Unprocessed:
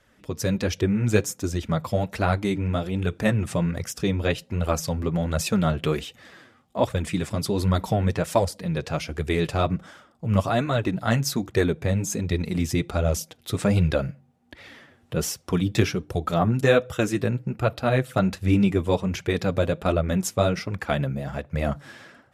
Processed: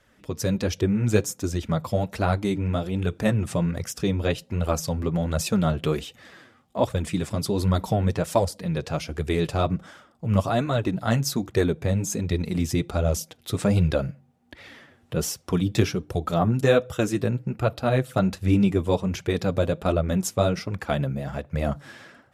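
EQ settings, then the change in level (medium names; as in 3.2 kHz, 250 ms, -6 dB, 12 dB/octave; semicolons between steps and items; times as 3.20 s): dynamic bell 2 kHz, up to -4 dB, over -41 dBFS, Q 1.2; 0.0 dB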